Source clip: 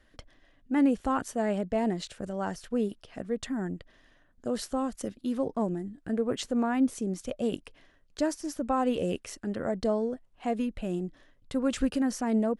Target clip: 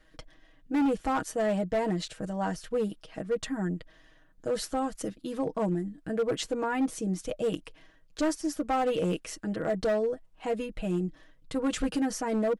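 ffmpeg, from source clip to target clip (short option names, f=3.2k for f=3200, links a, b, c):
-af "aecho=1:1:6.3:0.75,volume=22.5dB,asoftclip=hard,volume=-22.5dB"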